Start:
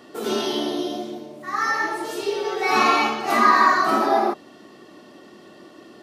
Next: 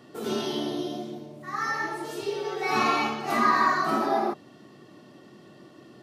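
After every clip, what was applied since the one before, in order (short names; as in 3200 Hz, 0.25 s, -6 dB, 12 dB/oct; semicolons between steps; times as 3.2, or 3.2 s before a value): bell 130 Hz +13.5 dB 0.98 oct; gain -6.5 dB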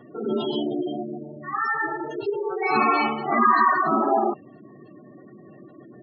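spectral gate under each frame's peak -15 dB strong; gain +4.5 dB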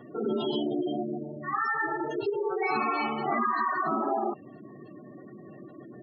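compressor 6:1, threshold -25 dBFS, peak gain reduction 11 dB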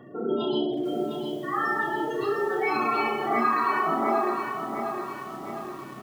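reverse bouncing-ball echo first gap 30 ms, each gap 1.2×, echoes 5; lo-fi delay 0.707 s, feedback 55%, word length 8-bit, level -6.5 dB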